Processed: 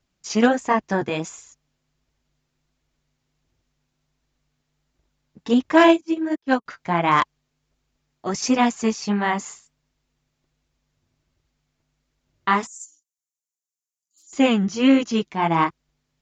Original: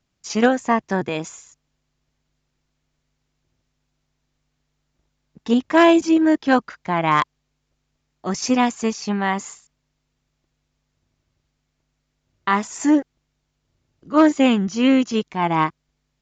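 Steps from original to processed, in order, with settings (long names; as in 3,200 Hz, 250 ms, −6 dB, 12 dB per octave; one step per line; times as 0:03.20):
0:12.66–0:14.33: inverse Chebyshev high-pass filter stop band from 1,800 Hz, stop band 70 dB
flanger 1.4 Hz, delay 1.8 ms, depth 7.8 ms, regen −36%
0:05.88–0:06.66: expander for the loud parts 2.5 to 1, over −34 dBFS
level +3.5 dB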